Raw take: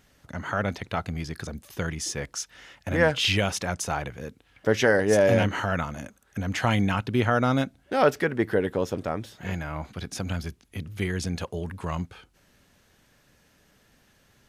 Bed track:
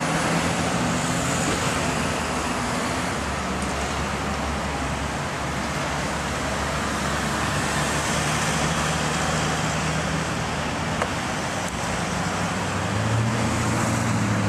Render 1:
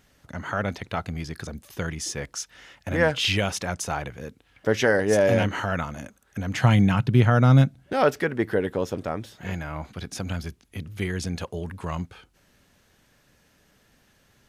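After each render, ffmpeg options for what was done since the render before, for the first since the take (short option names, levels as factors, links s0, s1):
-filter_complex "[0:a]asettb=1/sr,asplit=3[s0][s1][s2];[s0]atrim=end=6.534[s3];[s1]atrim=start=6.53:end=7.93,asetpts=PTS-STARTPTS,afade=t=in:d=0.004:c=qsin,afade=t=out:st=1.396:d=0.004:c=qsin,equalizer=f=140:t=o:w=0.77:g=14.5[s4];[s2]atrim=start=7.926[s5];[s3][s4]acrossfade=d=0.004:c1=hsin:c2=qsin[s6];[s6][s5]acrossfade=d=0.004:c1=qsin:c2=hsin"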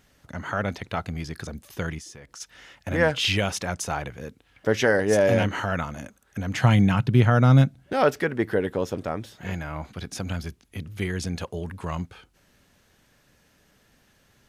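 -filter_complex "[0:a]asplit=3[s0][s1][s2];[s0]afade=t=out:st=1.98:d=0.02[s3];[s1]acompressor=threshold=0.00891:ratio=5:attack=3.2:release=140:knee=1:detection=peak,afade=t=in:st=1.98:d=0.02,afade=t=out:st=2.4:d=0.02[s4];[s2]afade=t=in:st=2.4:d=0.02[s5];[s3][s4][s5]amix=inputs=3:normalize=0"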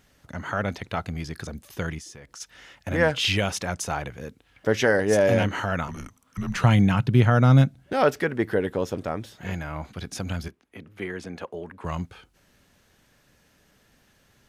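-filter_complex "[0:a]asettb=1/sr,asplit=3[s0][s1][s2];[s0]atrim=end=5.884[s3];[s1]atrim=start=5.88:end=6.64,asetpts=PTS-STARTPTS,afade=t=in:d=0.004:c=qsin,afade=t=out:st=0.756:d=0.004:c=qsin,afreqshift=-310[s4];[s2]atrim=start=6.636[s5];[s3][s4]acrossfade=d=0.004:c1=hsin:c2=qsin[s6];[s6][s5]acrossfade=d=0.004:c1=qsin:c2=hsin,asettb=1/sr,asplit=3[s7][s8][s9];[s7]atrim=end=10.484[s10];[s8]atrim=start=10.48:end=11.85,asetpts=PTS-STARTPTS,afade=t=in:d=0.004:c=qsin,afade=t=out:st=1.366:d=0.004:c=qsin,acrossover=split=230 2500:gain=0.158 1 0.224[s11][s12][s13];[s11][s12][s13]amix=inputs=3:normalize=0[s14];[s9]atrim=start=11.846[s15];[s10][s14]acrossfade=d=0.004:c1=hsin:c2=qsin[s16];[s16][s15]acrossfade=d=0.004:c1=qsin:c2=hsin"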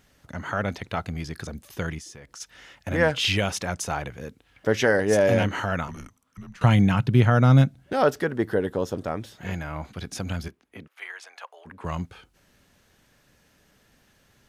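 -filter_complex "[0:a]asettb=1/sr,asplit=3[s0][s1][s2];[s0]atrim=end=7.954[s3];[s1]atrim=start=7.95:end=9.07,asetpts=PTS-STARTPTS,afade=t=in:d=0.004:c=qsin,afade=t=out:st=1.116:d=0.004:c=qsin,equalizer=f=2300:t=o:w=0.53:g=-7.5[s4];[s2]atrim=start=9.066[s5];[s3][s4]acrossfade=d=0.004:c1=hsin:c2=qsin[s6];[s6][s5]acrossfade=d=0.004:c1=qsin:c2=hsin,asplit=3[s7][s8][s9];[s7]afade=t=out:st=10.86:d=0.02[s10];[s8]highpass=f=780:w=0.5412,highpass=f=780:w=1.3066,afade=t=in:st=10.86:d=0.02,afade=t=out:st=11.65:d=0.02[s11];[s9]afade=t=in:st=11.65:d=0.02[s12];[s10][s11][s12]amix=inputs=3:normalize=0,asplit=2[s13][s14];[s13]atrim=end=6.61,asetpts=PTS-STARTPTS,afade=t=out:st=5.74:d=0.87:silence=0.0794328[s15];[s14]atrim=start=6.61,asetpts=PTS-STARTPTS,afade=t=in:d=0.004:c=hsin:silence=0.0794328[s16];[s15][s16]concat=n=2:v=0:a=1"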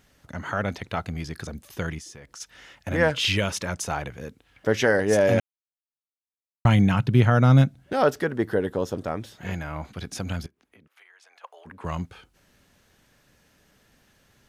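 -filter_complex "[0:a]asettb=1/sr,asplit=3[s0][s1][s2];[s0]atrim=end=3.104[s3];[s1]atrim=start=3.1:end=3.75,asetpts=PTS-STARTPTS,afade=t=in:d=0.004:c=qsin,afade=t=out:st=0.646:d=0.004:c=qsin,asuperstop=centerf=750:order=4:qfactor=5.9[s4];[s2]atrim=start=3.746[s5];[s3][s4]acrossfade=d=0.004:c1=hsin:c2=qsin[s6];[s6][s5]acrossfade=d=0.004:c1=qsin:c2=hsin,asettb=1/sr,asplit=3[s7][s8][s9];[s7]atrim=end=10.464[s10];[s8]atrim=start=10.46:end=11.44,asetpts=PTS-STARTPTS,afade=t=in:d=0.004:c=qsin,afade=t=out:st=0.976:d=0.004:c=qsin,acompressor=threshold=0.00224:ratio=5:attack=3.2:release=140:knee=1:detection=peak[s11];[s9]atrim=start=11.436[s12];[s10][s11]acrossfade=d=0.004:c1=hsin:c2=qsin[s13];[s13][s12]acrossfade=d=0.004:c1=qsin:c2=hsin,asplit=3[s14][s15][s16];[s14]atrim=end=5.4,asetpts=PTS-STARTPTS,afade=t=out:st=5.396:d=0.004:c=hsin[s17];[s15]atrim=start=5.4:end=6.65,asetpts=PTS-STARTPTS,volume=0[s18];[s16]atrim=start=6.65,asetpts=PTS-STARTPTS,afade=t=in:d=0.004:c=hsin[s19];[s17][s18][s19]concat=n=3:v=0:a=1"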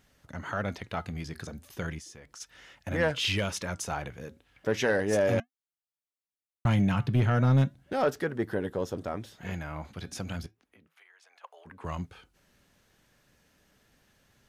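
-af "flanger=delay=1:depth=5.7:regen=-86:speed=0.35:shape=triangular,asoftclip=type=tanh:threshold=0.158"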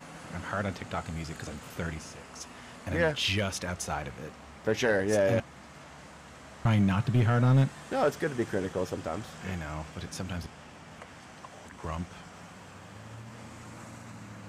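-filter_complex "[1:a]volume=0.0708[s0];[0:a][s0]amix=inputs=2:normalize=0"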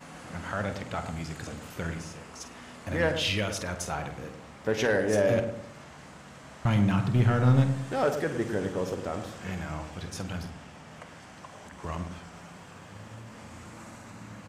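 -filter_complex "[0:a]asplit=2[s0][s1];[s1]adelay=48,volume=0.282[s2];[s0][s2]amix=inputs=2:normalize=0,asplit=2[s3][s4];[s4]adelay=106,lowpass=f=900:p=1,volume=0.473,asplit=2[s5][s6];[s6]adelay=106,lowpass=f=900:p=1,volume=0.43,asplit=2[s7][s8];[s8]adelay=106,lowpass=f=900:p=1,volume=0.43,asplit=2[s9][s10];[s10]adelay=106,lowpass=f=900:p=1,volume=0.43,asplit=2[s11][s12];[s12]adelay=106,lowpass=f=900:p=1,volume=0.43[s13];[s5][s7][s9][s11][s13]amix=inputs=5:normalize=0[s14];[s3][s14]amix=inputs=2:normalize=0"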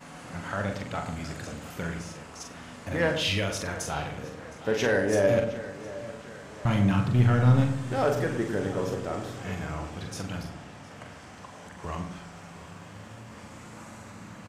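-filter_complex "[0:a]asplit=2[s0][s1];[s1]adelay=41,volume=0.473[s2];[s0][s2]amix=inputs=2:normalize=0,asplit=2[s3][s4];[s4]adelay=713,lowpass=f=4900:p=1,volume=0.158,asplit=2[s5][s6];[s6]adelay=713,lowpass=f=4900:p=1,volume=0.52,asplit=2[s7][s8];[s8]adelay=713,lowpass=f=4900:p=1,volume=0.52,asplit=2[s9][s10];[s10]adelay=713,lowpass=f=4900:p=1,volume=0.52,asplit=2[s11][s12];[s12]adelay=713,lowpass=f=4900:p=1,volume=0.52[s13];[s3][s5][s7][s9][s11][s13]amix=inputs=6:normalize=0"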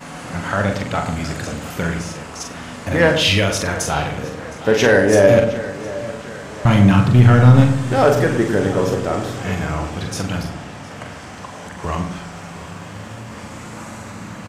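-af "volume=3.76,alimiter=limit=0.891:level=0:latency=1"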